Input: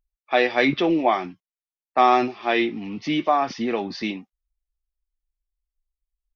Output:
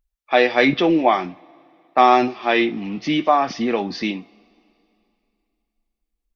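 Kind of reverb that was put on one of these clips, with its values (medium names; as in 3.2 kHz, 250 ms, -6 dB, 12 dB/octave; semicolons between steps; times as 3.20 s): two-slope reverb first 0.28 s, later 2.8 s, from -21 dB, DRR 15 dB; trim +3.5 dB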